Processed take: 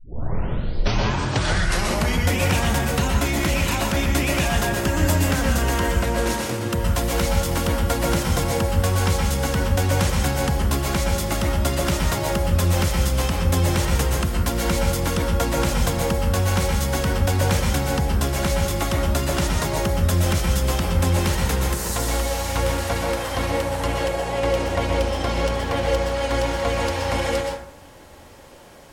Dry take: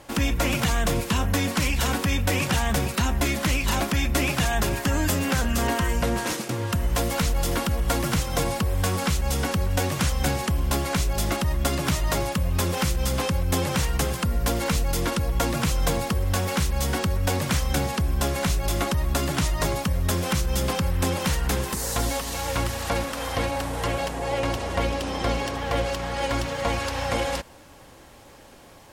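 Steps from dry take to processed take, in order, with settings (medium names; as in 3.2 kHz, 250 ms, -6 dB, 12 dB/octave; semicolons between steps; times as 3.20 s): tape start-up on the opening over 2.36 s; plate-style reverb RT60 0.62 s, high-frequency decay 0.5×, pre-delay 110 ms, DRR 0 dB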